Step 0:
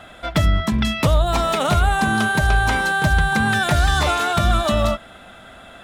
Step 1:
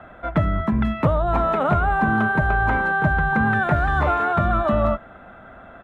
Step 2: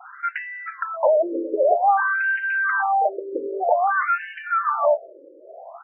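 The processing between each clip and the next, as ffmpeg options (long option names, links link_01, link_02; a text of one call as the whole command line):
ffmpeg -i in.wav -filter_complex "[0:a]firequalizer=gain_entry='entry(1400,0);entry(3000,-16);entry(5000,-28)':delay=0.05:min_phase=1,acrossover=split=120|820|3200[link_01][link_02][link_03][link_04];[link_01]alimiter=limit=-20dB:level=0:latency=1[link_05];[link_05][link_02][link_03][link_04]amix=inputs=4:normalize=0" out.wav
ffmpeg -i in.wav -af "adynamicequalizer=threshold=0.0158:dfrequency=1800:dqfactor=1.2:tfrequency=1800:tqfactor=1.2:attack=5:release=100:ratio=0.375:range=2.5:mode=cutabove:tftype=bell,afftfilt=real='re*between(b*sr/1024,400*pow(2200/400,0.5+0.5*sin(2*PI*0.52*pts/sr))/1.41,400*pow(2200/400,0.5+0.5*sin(2*PI*0.52*pts/sr))*1.41)':imag='im*between(b*sr/1024,400*pow(2200/400,0.5+0.5*sin(2*PI*0.52*pts/sr))/1.41,400*pow(2200/400,0.5+0.5*sin(2*PI*0.52*pts/sr))*1.41)':win_size=1024:overlap=0.75,volume=7.5dB" out.wav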